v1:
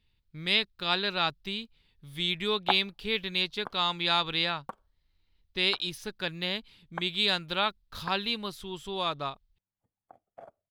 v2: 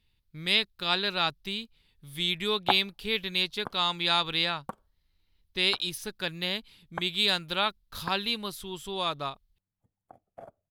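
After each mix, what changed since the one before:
background: add low shelf 320 Hz +9.5 dB; master: add bell 12000 Hz +9.5 dB 1.2 oct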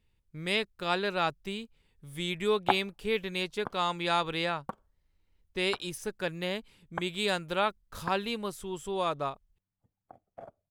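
speech: add graphic EQ 500/4000/8000 Hz +5/-11/+9 dB; master: add bell 12000 Hz -9.5 dB 1.2 oct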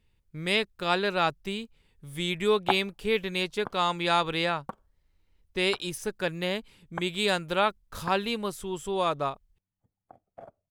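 speech +3.5 dB

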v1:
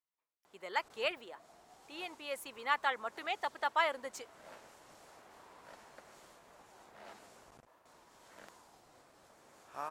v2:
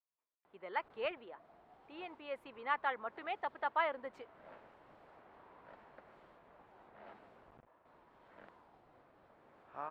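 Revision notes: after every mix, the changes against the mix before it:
master: add air absorption 490 m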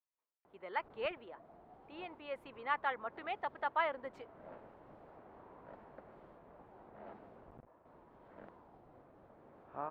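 background: add tilt shelf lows +7.5 dB, about 1200 Hz

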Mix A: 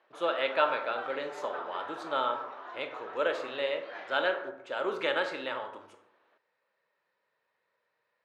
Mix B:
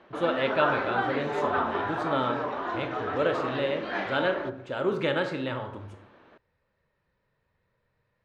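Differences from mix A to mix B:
background +11.5 dB; master: remove HPF 530 Hz 12 dB/oct

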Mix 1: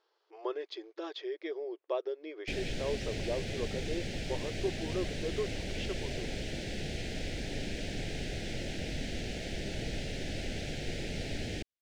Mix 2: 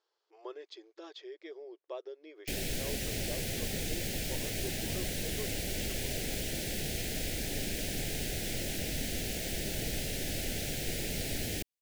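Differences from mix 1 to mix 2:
speech -8.5 dB; master: remove air absorption 120 m

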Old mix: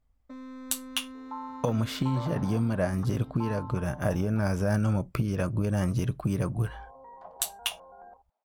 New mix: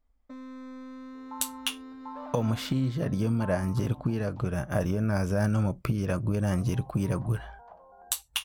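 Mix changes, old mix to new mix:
speech: entry +0.70 s; second sound -3.5 dB

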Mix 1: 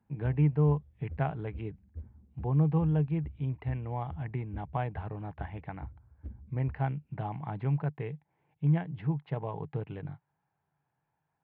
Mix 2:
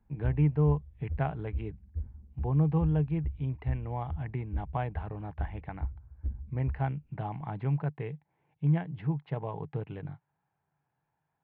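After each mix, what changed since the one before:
background: remove HPF 110 Hz 12 dB/oct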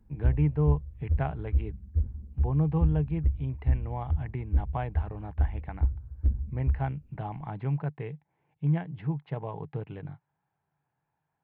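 background +9.0 dB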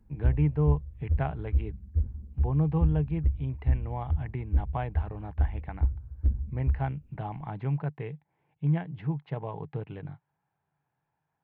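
speech: remove air absorption 57 m

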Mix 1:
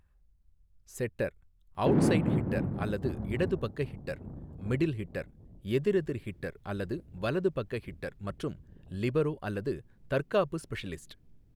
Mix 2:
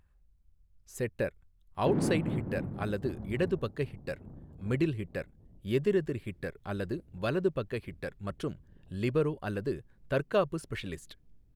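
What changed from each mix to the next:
background -5.0 dB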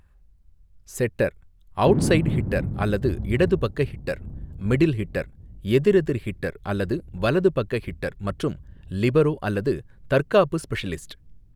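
speech +9.5 dB; background: remove HPF 400 Hz 6 dB/oct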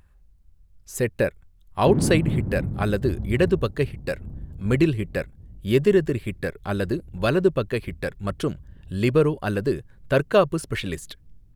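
master: add high shelf 5900 Hz +4 dB

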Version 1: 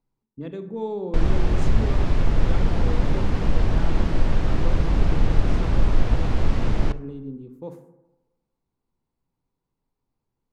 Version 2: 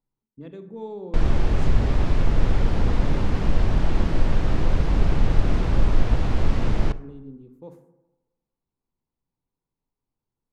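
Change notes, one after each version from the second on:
speech -6.0 dB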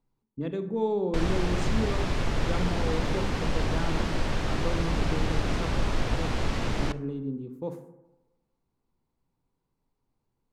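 speech +8.0 dB; background: add tilt +2 dB/oct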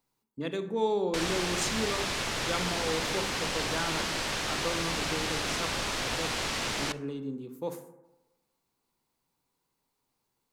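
speech +3.5 dB; master: add tilt +3.5 dB/oct

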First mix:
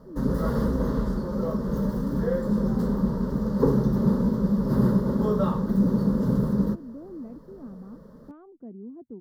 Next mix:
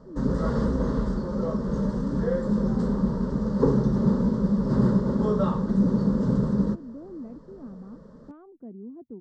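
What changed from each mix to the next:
master: add brick-wall FIR low-pass 8700 Hz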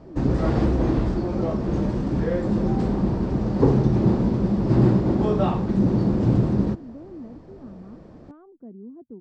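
background: remove fixed phaser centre 490 Hz, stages 8

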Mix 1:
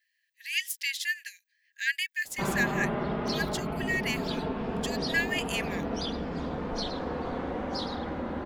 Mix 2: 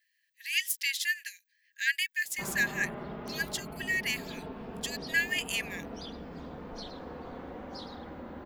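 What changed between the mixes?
speech: add high shelf 8200 Hz +5 dB; background -9.5 dB

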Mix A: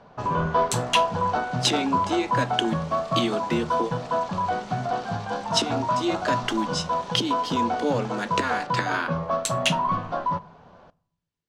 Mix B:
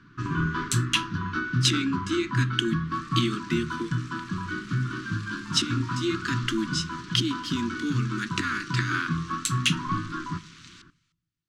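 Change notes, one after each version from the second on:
first sound: add thirty-one-band EQ 125 Hz +7 dB, 315 Hz +9 dB, 1600 Hz +6 dB; second sound: entry +2.15 s; master: add elliptic band-stop 340–1200 Hz, stop band 50 dB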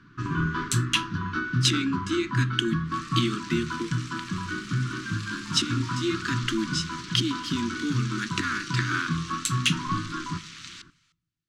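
second sound +7.5 dB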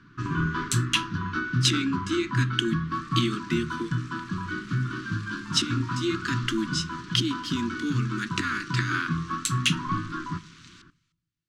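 second sound -10.0 dB

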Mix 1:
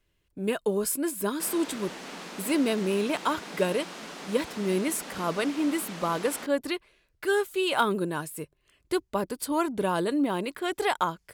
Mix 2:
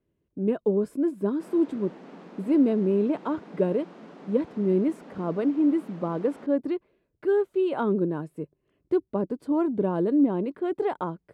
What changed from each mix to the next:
speech: add bell 270 Hz +5.5 dB 2.7 oct; master: add band-pass 240 Hz, Q 0.57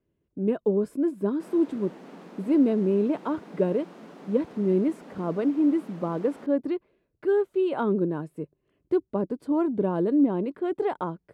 background: remove air absorption 66 m

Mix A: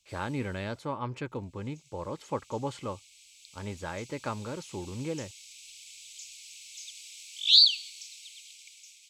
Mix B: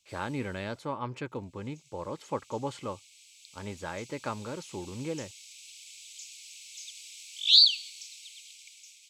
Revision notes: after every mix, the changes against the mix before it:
master: add low shelf 66 Hz -11 dB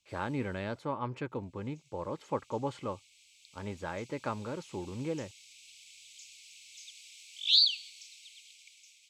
master: add high shelf 3600 Hz -9 dB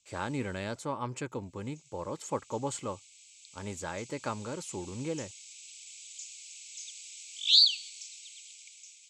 speech: remove Bessel low-pass 3700 Hz, order 2; master: add synth low-pass 7500 Hz, resonance Q 3.7

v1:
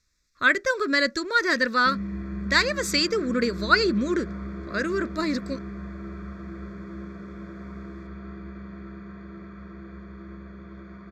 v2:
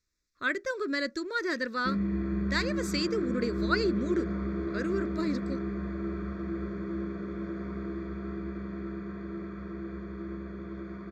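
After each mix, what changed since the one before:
speech -10.5 dB; master: add bell 350 Hz +7 dB 0.99 oct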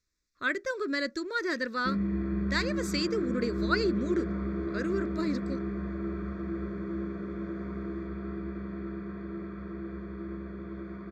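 background: add air absorption 99 m

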